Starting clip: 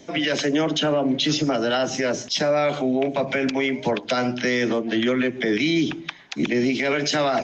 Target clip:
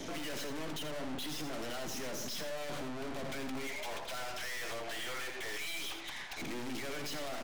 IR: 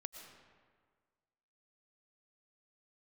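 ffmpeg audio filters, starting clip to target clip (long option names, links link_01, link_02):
-filter_complex "[0:a]asettb=1/sr,asplit=3[link_01][link_02][link_03];[link_01]atrim=end=3.674[link_04];[link_02]atrim=start=3.67:end=6.42,asetpts=PTS-STARTPTS,afade=type=in:duration=0.004:curve=qsin,afade=type=out:start_time=2.746:duration=0.004:curve=qsin,highpass=frequency=640:width=0.5412,highpass=frequency=640:width=1.3066[link_05];[link_03]atrim=start=6.416[link_06];[link_04][link_05]acrossfade=duration=0.004:curve1=hsin:curve2=qsin[link_07];[link_07][link_06]acrossfade=duration=0.004:curve1=qsin:curve2=hsin,acompressor=threshold=-26dB:ratio=6,alimiter=limit=-23.5dB:level=0:latency=1:release=39,aeval=exprs='(tanh(355*val(0)+0.75)-tanh(0.75))/355':channel_layout=same,aecho=1:1:84:0.355,volume=10.5dB"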